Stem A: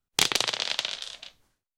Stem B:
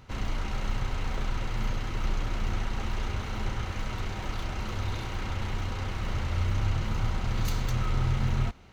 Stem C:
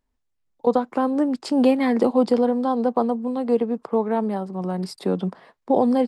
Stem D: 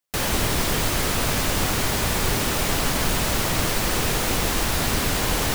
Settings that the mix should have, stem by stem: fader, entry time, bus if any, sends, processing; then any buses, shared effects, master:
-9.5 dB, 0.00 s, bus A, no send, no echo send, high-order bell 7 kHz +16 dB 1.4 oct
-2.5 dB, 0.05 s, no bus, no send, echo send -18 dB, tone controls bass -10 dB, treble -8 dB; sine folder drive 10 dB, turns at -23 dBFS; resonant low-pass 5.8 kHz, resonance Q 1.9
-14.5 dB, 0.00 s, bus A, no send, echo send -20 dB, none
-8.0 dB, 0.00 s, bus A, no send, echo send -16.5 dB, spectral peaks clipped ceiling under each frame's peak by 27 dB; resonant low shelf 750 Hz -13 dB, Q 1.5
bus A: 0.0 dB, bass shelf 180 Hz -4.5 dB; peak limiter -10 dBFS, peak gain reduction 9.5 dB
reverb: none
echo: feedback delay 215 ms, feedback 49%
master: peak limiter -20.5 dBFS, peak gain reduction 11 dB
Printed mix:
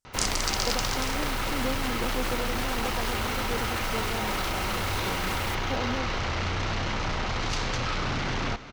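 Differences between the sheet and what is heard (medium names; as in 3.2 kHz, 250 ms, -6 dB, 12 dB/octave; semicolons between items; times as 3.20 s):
stem D -8.0 dB -> -19.0 dB; master: missing peak limiter -20.5 dBFS, peak gain reduction 11 dB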